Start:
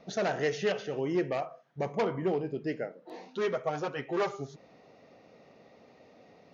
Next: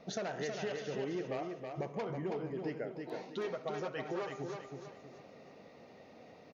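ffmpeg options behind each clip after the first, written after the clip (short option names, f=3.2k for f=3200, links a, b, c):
-filter_complex "[0:a]acompressor=threshold=-36dB:ratio=6,asplit=2[a][b];[b]aecho=0:1:323|646|969|1292|1615:0.562|0.208|0.077|0.0285|0.0105[c];[a][c]amix=inputs=2:normalize=0"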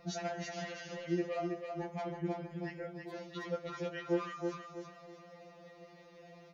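-af "afftfilt=real='re*2.83*eq(mod(b,8),0)':imag='im*2.83*eq(mod(b,8),0)':win_size=2048:overlap=0.75,volume=3dB"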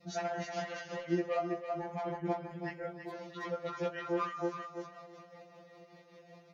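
-af "tremolo=f=5.2:d=0.5,adynamicequalizer=threshold=0.00178:dfrequency=1000:dqfactor=0.73:tfrequency=1000:tqfactor=0.73:attack=5:release=100:ratio=0.375:range=4:mode=boostabove:tftype=bell,volume=1dB" -ar 48000 -c:a libvorbis -b:a 64k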